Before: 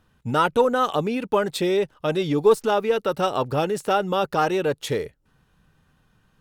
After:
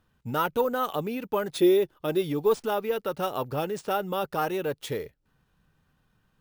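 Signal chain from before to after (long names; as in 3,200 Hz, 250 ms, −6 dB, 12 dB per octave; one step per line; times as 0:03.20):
0:01.56–0:02.20: hollow resonant body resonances 350/3,500 Hz, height 12 dB → 9 dB
bad sample-rate conversion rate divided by 3×, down none, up hold
level −6.5 dB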